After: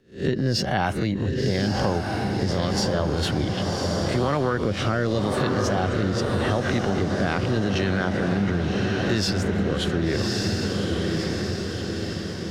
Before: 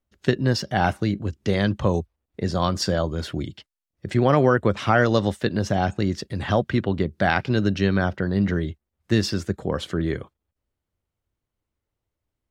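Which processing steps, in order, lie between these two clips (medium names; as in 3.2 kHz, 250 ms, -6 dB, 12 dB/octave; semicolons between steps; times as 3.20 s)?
reverse spectral sustain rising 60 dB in 0.31 s; wow and flutter 27 cents; rotary cabinet horn 0.85 Hz; transient shaper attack -4 dB, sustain +6 dB; on a send: echo that smears into a reverb 1132 ms, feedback 53%, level -5 dB; on the sum: compression 6:1, threshold -25 dBFS, peak gain reduction 12 dB; trim +5.5 dB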